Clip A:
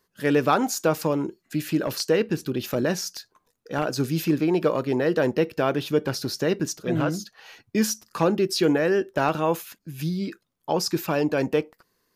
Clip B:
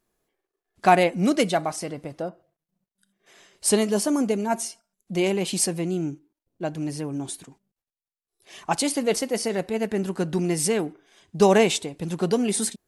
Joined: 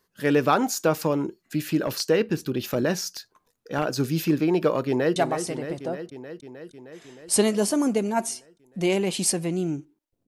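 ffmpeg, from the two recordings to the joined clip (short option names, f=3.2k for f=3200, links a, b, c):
-filter_complex "[0:a]apad=whole_dur=10.27,atrim=end=10.27,atrim=end=5.162[a];[1:a]atrim=start=1.498:end=6.61[b];[a][b]acrossfade=d=0.004:c1=hsin:c2=hsin,asplit=2[c][d];[d]afade=t=in:st=4.87:d=0.01,afade=t=out:st=5.16:d=0.01,aecho=0:1:310|620|930|1240|1550|1860|2170|2480|2790|3100|3410|3720:0.375837|0.281878|0.211409|0.158556|0.118917|0.089188|0.066891|0.0501682|0.0376262|0.0282196|0.0211647|0.0158735[e];[c][e]amix=inputs=2:normalize=0"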